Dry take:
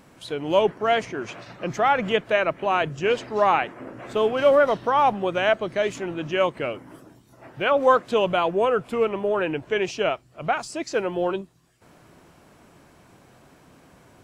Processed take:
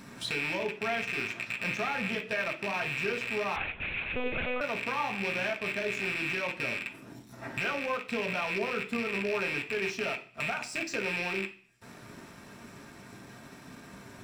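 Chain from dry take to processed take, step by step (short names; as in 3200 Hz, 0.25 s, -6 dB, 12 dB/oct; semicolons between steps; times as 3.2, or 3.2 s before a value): rattling part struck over -44 dBFS, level -13 dBFS; compressor 3:1, threshold -40 dBFS, peak gain reduction 20 dB; sample leveller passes 2; reverb RT60 0.40 s, pre-delay 3 ms, DRR 0.5 dB; 3.56–4.61 monotone LPC vocoder at 8 kHz 250 Hz; gain -3.5 dB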